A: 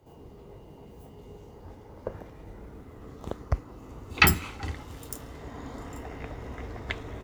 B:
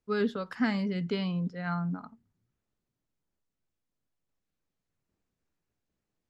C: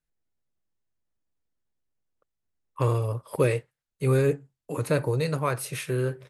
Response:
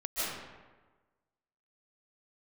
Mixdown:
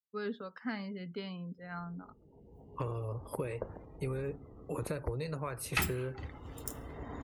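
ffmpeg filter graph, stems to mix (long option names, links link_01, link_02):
-filter_complex "[0:a]adelay=1550,volume=5dB,afade=type=in:start_time=2.18:duration=0.61:silence=0.354813,afade=type=out:start_time=4.34:duration=0.63:silence=0.421697,afade=type=in:start_time=6.16:duration=0.43:silence=0.316228[link_01];[1:a]agate=range=-33dB:threshold=-43dB:ratio=3:detection=peak,lowshelf=frequency=130:gain=-10.5,adelay=50,volume=-8dB[link_02];[2:a]highpass=87,acompressor=threshold=-30dB:ratio=20,volume=-3dB[link_03];[link_01][link_02][link_03]amix=inputs=3:normalize=0,aeval=exprs='clip(val(0),-1,0.0668)':channel_layout=same,afftdn=noise_reduction=20:noise_floor=-58"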